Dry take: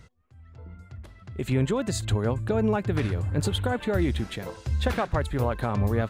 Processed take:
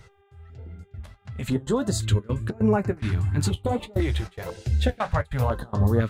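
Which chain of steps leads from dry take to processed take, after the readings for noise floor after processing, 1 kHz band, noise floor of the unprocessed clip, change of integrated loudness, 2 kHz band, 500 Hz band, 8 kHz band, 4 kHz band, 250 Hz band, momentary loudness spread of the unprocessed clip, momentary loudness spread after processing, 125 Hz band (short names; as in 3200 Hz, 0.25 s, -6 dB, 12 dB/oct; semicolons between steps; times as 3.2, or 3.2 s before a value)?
-59 dBFS, +0.5 dB, -52 dBFS, +1.5 dB, -1.0 dB, 0.0 dB, +2.5 dB, -1.0 dB, +1.5 dB, 18 LU, 19 LU, +2.5 dB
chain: step gate "xx.xxxxx.xx.x" 144 bpm -24 dB; buzz 400 Hz, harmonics 9, -63 dBFS -8 dB/oct; flange 1.5 Hz, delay 8.1 ms, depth 6.4 ms, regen -42%; stepped notch 2 Hz 240–3400 Hz; gain +7 dB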